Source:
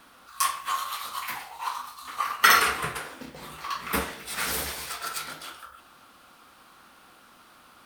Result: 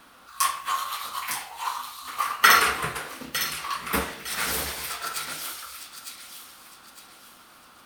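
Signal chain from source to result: thin delay 0.907 s, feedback 35%, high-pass 2800 Hz, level -6 dB; gain +1.5 dB

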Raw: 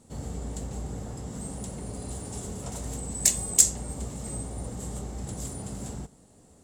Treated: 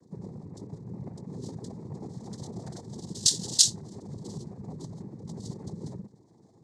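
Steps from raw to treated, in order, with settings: formant sharpening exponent 2; noise vocoder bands 6

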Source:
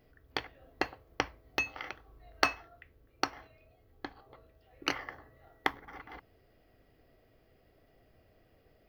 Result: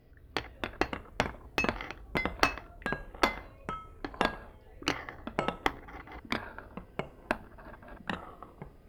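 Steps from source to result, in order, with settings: low shelf 270 Hz +8.5 dB; echoes that change speed 0.175 s, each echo -4 st, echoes 3; added harmonics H 8 -22 dB, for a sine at -2.5 dBFS

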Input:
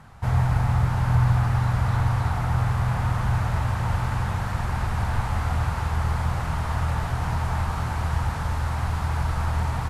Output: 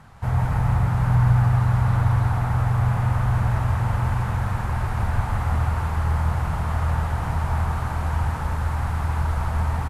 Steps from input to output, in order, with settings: dynamic EQ 4700 Hz, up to -6 dB, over -54 dBFS, Q 0.7; on a send: echo 0.164 s -4.5 dB

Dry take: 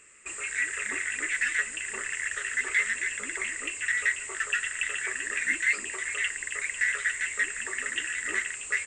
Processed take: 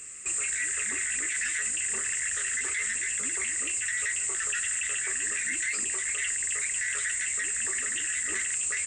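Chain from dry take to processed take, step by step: HPF 43 Hz; tone controls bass +8 dB, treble +13 dB; limiter -23.5 dBFS, peak gain reduction 13 dB; gain +2.5 dB

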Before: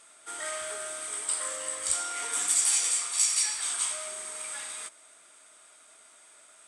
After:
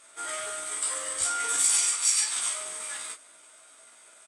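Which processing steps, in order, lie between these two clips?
doubler 35 ms -5 dB; granular stretch 0.64×, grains 97 ms; on a send: early reflections 17 ms -3 dB, 37 ms -9.5 dB

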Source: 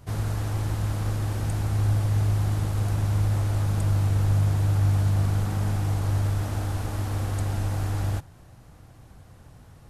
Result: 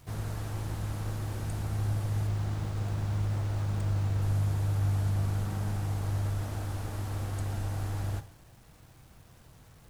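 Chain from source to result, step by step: bit-crush 9-bit; reverb, pre-delay 3 ms, DRR 10 dB; 2.27–4.22 running maximum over 3 samples; gain -6.5 dB

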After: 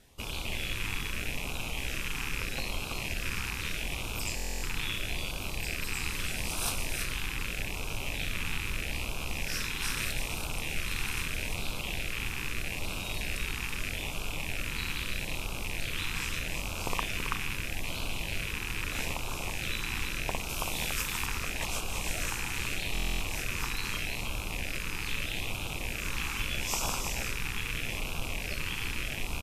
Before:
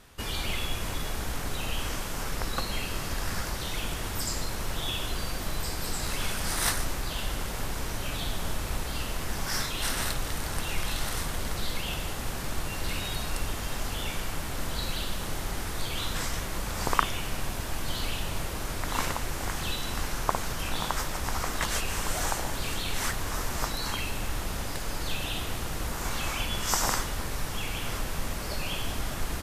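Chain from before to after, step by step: rattling part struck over -39 dBFS, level -17 dBFS; notch 4500 Hz, Q 26; echo 0.329 s -5.5 dB; LFO notch sine 0.79 Hz 590–1900 Hz; 20.49–21.26 high shelf 5500 Hz +8 dB; stuck buffer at 4.35/22.93, samples 1024, times 11; gain -4.5 dB; MP3 96 kbps 32000 Hz

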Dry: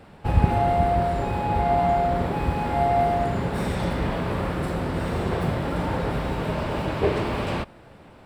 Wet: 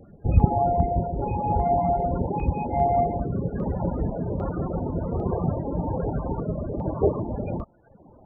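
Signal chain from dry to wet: loudest bins only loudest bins 32; reverb removal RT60 0.88 s; stepped notch 2.5 Hz 920–4100 Hz; gain +2 dB

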